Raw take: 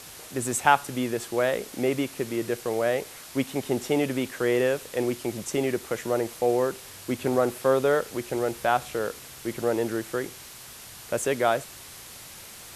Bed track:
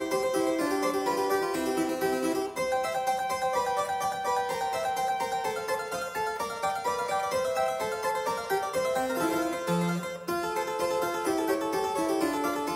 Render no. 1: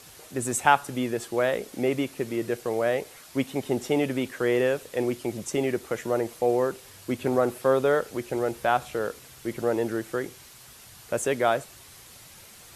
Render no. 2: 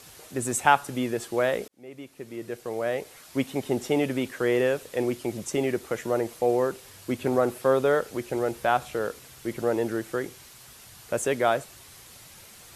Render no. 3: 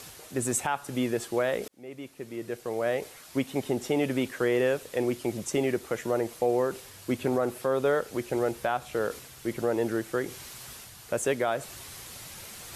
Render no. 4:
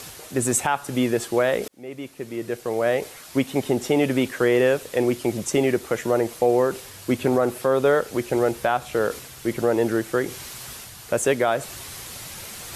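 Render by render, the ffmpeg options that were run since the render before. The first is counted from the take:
-af "afftdn=nr=6:nf=-44"
-filter_complex "[0:a]asplit=2[s0][s1];[s0]atrim=end=1.68,asetpts=PTS-STARTPTS,afade=t=out:st=1.676:d=0.004:c=hsin[s2];[s1]atrim=start=1.68,asetpts=PTS-STARTPTS,afade=t=in:d=1.72[s3];[s2][s3]concat=n=2:v=0:a=1"
-af "alimiter=limit=0.168:level=0:latency=1:release=214,areverse,acompressor=mode=upward:threshold=0.0158:ratio=2.5,areverse"
-af "volume=2.11"

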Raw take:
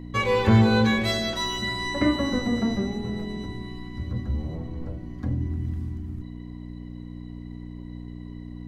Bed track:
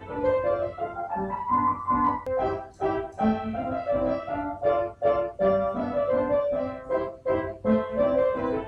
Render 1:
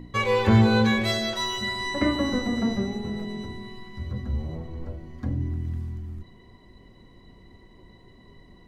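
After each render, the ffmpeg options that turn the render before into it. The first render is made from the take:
-af "bandreject=f=60:t=h:w=4,bandreject=f=120:t=h:w=4,bandreject=f=180:t=h:w=4,bandreject=f=240:t=h:w=4,bandreject=f=300:t=h:w=4,bandreject=f=360:t=h:w=4,bandreject=f=420:t=h:w=4,bandreject=f=480:t=h:w=4"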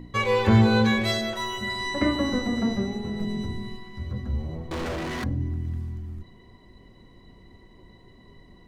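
-filter_complex "[0:a]asettb=1/sr,asplit=3[s0][s1][s2];[s0]atrim=end=1.214[s3];[s1]atrim=start=1.21:end=1.7,asetpts=PTS-STARTPTS,afade=t=in:d=0.004:c=qsin,afade=t=out:st=0.486:d=0.004:c=qsin,equalizer=f=4800:w=1.5:g=-8.5[s4];[s2]atrim=start=1.696[s5];[s3][s4]acrossfade=d=0.004:c1=hsin:c2=qsin[s6];[s6][s5]acrossfade=d=0.004:c1=qsin:c2=hsin,asettb=1/sr,asplit=3[s7][s8][s9];[s7]atrim=end=3.204[s10];[s8]atrim=start=3.2:end=3.77,asetpts=PTS-STARTPTS,afade=t=in:d=0.004:c=qsin,afade=t=out:st=0.566:d=0.004:c=qsin,bass=f=250:g=7,treble=f=4000:g=4[s11];[s9]atrim=start=3.766[s12];[s10][s11]acrossfade=d=0.004:c1=hsin:c2=qsin[s13];[s13][s12]acrossfade=d=0.004:c1=qsin:c2=hsin,asettb=1/sr,asplit=3[s14][s15][s16];[s14]atrim=end=4.714[s17];[s15]atrim=start=4.71:end=5.24,asetpts=PTS-STARTPTS,afade=t=in:d=0.004:c=qsin,afade=t=out:st=0.526:d=0.004:c=qsin,asplit=2[s18][s19];[s19]highpass=f=720:p=1,volume=126,asoftclip=type=tanh:threshold=0.0631[s20];[s18][s20]amix=inputs=2:normalize=0,lowpass=f=5800:p=1,volume=0.501[s21];[s16]atrim=start=5.236[s22];[s17][s21]acrossfade=d=0.004:c1=hsin:c2=qsin[s23];[s23][s22]acrossfade=d=0.004:c1=qsin:c2=hsin"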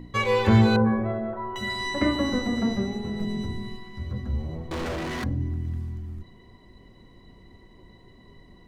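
-filter_complex "[0:a]asettb=1/sr,asplit=3[s0][s1][s2];[s0]atrim=end=0.764[s3];[s1]atrim=start=0.76:end=1.56,asetpts=PTS-STARTPTS,afade=t=in:d=0.004:c=qsin,afade=t=out:st=0.796:d=0.004:c=qsin,lowpass=f=1300:w=0.5412,lowpass=f=1300:w=1.3066[s4];[s2]atrim=start=1.556[s5];[s3][s4]acrossfade=d=0.004:c1=hsin:c2=qsin[s6];[s6][s5]acrossfade=d=0.004:c1=qsin:c2=hsin"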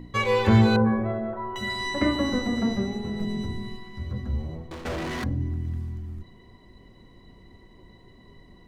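-filter_complex "[0:a]asplit=2[s0][s1];[s0]atrim=end=4.85,asetpts=PTS-STARTPTS,afade=t=out:st=4.28:d=0.57:c=qsin:silence=0.237137[s2];[s1]atrim=start=4.85,asetpts=PTS-STARTPTS,afade=t=in:d=0.004:c=hsin:silence=0.237137[s3];[s2][s3]concat=n=2:v=0:a=1"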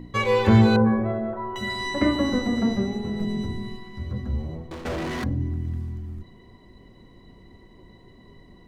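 -af "equalizer=f=290:w=0.39:g=2.5"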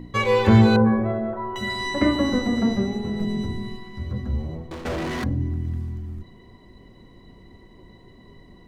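-af "volume=1.19"

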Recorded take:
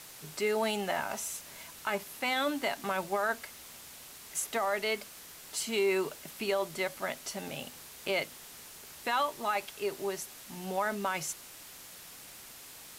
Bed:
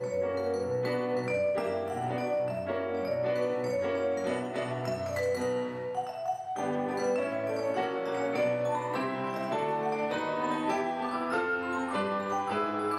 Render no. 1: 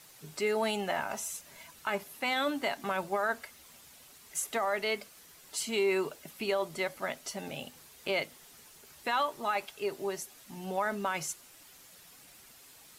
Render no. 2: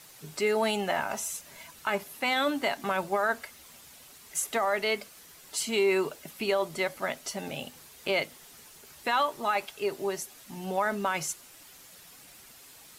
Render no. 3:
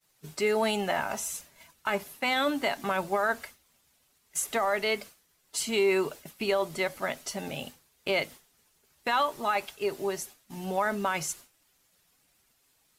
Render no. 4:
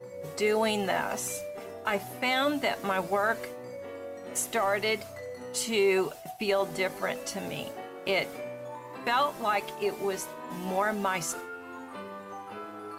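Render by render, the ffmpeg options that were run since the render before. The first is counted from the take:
-af "afftdn=nr=8:nf=-50"
-af "volume=1.5"
-af "lowshelf=f=82:g=7,agate=range=0.0224:threshold=0.01:ratio=3:detection=peak"
-filter_complex "[1:a]volume=0.299[s0];[0:a][s0]amix=inputs=2:normalize=0"

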